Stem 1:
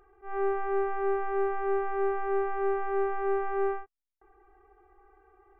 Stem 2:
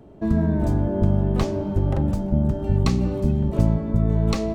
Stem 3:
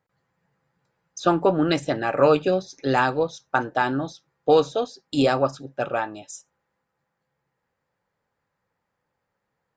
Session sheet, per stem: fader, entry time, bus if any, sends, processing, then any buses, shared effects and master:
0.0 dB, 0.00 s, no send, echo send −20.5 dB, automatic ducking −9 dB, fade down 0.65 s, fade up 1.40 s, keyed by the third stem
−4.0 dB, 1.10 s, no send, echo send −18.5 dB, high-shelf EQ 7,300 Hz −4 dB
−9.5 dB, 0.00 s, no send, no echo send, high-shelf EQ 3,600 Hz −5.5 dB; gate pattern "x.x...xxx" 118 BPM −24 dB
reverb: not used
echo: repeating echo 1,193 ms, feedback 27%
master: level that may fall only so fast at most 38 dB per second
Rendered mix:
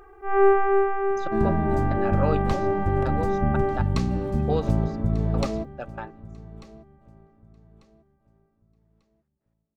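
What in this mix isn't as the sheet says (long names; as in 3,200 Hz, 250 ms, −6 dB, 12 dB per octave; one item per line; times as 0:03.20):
stem 1 0.0 dB → +11.5 dB
master: missing level that may fall only so fast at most 38 dB per second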